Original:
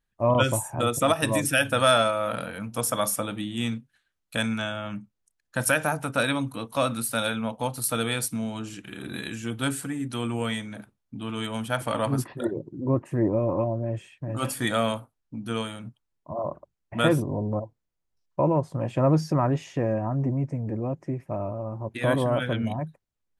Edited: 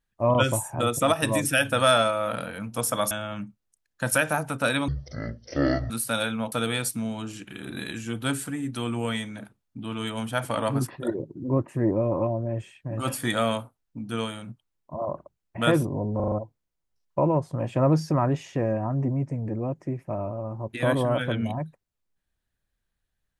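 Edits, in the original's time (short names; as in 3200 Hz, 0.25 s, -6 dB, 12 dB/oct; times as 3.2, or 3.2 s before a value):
3.11–4.65 cut
6.42–6.94 speed 51%
7.56–7.89 cut
17.53 stutter 0.04 s, 5 plays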